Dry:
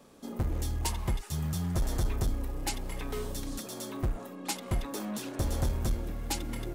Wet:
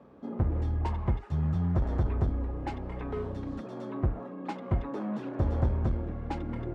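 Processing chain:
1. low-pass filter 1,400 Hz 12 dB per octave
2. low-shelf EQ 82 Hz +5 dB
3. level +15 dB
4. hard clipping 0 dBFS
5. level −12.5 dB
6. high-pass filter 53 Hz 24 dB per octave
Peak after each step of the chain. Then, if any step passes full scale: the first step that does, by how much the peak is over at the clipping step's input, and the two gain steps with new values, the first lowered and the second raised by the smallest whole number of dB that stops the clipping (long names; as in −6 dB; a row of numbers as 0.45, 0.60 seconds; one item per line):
−22.5, −18.0, −3.0, −3.0, −15.5, −12.5 dBFS
no step passes full scale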